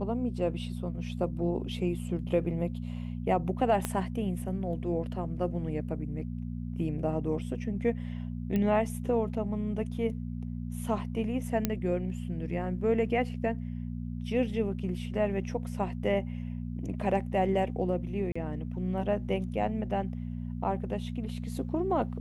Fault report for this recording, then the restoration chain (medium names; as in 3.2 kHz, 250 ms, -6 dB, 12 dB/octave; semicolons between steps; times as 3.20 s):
hum 60 Hz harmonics 4 -36 dBFS
3.85 s: pop -15 dBFS
8.56 s: pop -19 dBFS
11.65 s: pop -12 dBFS
18.32–18.36 s: dropout 35 ms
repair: de-click; de-hum 60 Hz, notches 4; interpolate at 18.32 s, 35 ms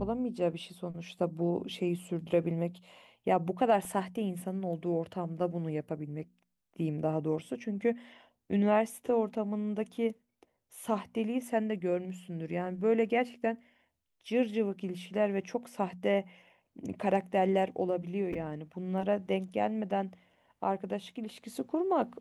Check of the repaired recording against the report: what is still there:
3.85 s: pop